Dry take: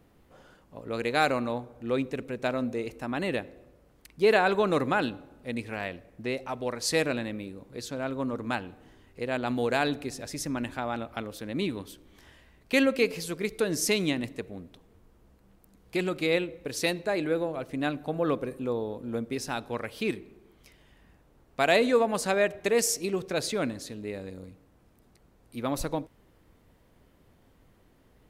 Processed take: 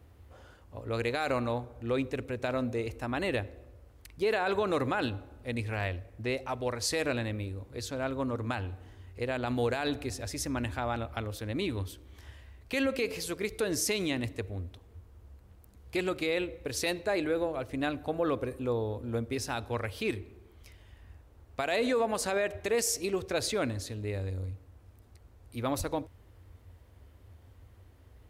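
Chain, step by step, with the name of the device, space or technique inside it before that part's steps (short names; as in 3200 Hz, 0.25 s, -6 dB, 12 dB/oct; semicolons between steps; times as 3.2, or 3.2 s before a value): car stereo with a boomy subwoofer (resonant low shelf 120 Hz +9 dB, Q 3; limiter -20 dBFS, peak gain reduction 9.5 dB); HPF 54 Hz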